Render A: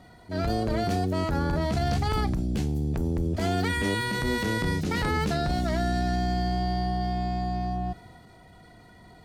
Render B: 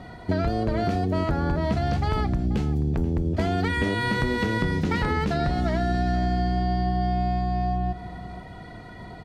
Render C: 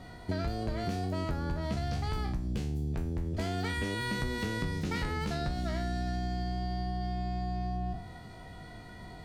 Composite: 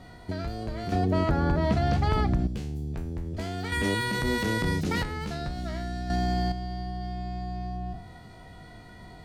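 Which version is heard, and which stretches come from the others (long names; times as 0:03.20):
C
0:00.92–0:02.47: punch in from B
0:03.72–0:05.03: punch in from A
0:06.10–0:06.52: punch in from A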